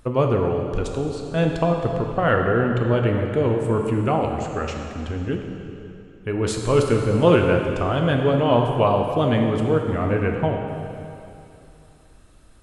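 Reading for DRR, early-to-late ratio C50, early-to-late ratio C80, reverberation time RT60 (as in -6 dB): 2.0 dB, 3.5 dB, 4.5 dB, 2.8 s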